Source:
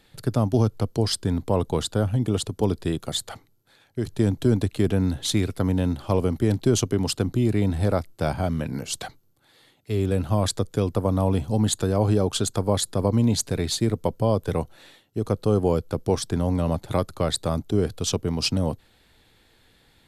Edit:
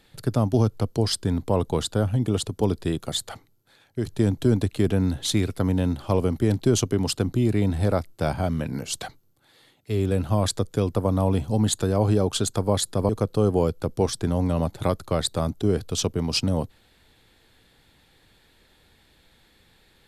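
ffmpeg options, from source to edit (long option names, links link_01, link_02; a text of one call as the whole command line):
ffmpeg -i in.wav -filter_complex "[0:a]asplit=2[link_01][link_02];[link_01]atrim=end=13.092[link_03];[link_02]atrim=start=15.178[link_04];[link_03][link_04]acrossfade=duration=0.004:curve1=hsin:curve2=hsin" out.wav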